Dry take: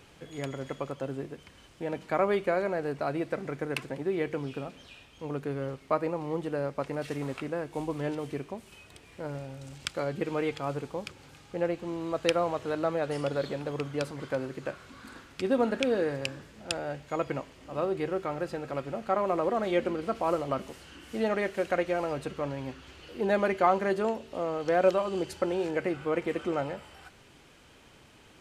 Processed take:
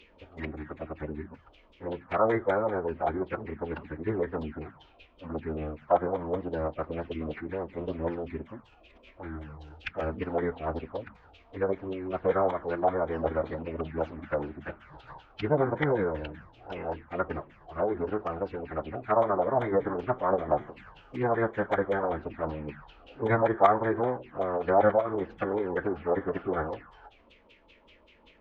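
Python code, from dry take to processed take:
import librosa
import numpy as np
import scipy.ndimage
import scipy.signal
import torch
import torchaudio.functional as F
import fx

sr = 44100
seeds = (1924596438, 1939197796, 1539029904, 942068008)

y = fx.filter_lfo_lowpass(x, sr, shape='saw_down', hz=5.2, low_hz=820.0, high_hz=3400.0, q=5.0)
y = fx.env_phaser(y, sr, low_hz=190.0, high_hz=4700.0, full_db=-24.5)
y = fx.pitch_keep_formants(y, sr, semitones=-10.0)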